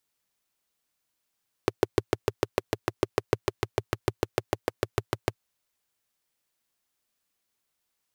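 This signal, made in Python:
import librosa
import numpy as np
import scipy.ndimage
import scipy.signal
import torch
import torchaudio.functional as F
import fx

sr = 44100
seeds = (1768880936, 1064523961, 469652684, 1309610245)

y = fx.engine_single(sr, seeds[0], length_s=3.67, rpm=800, resonances_hz=(110.0, 380.0))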